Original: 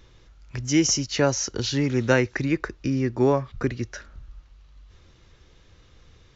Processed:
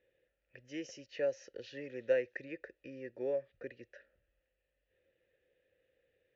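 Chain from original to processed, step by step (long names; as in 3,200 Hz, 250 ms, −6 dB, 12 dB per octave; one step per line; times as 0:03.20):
low-pass that shuts in the quiet parts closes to 2,800 Hz, open at −18.5 dBFS
formant filter e
low-shelf EQ 64 Hz +6.5 dB
level −5.5 dB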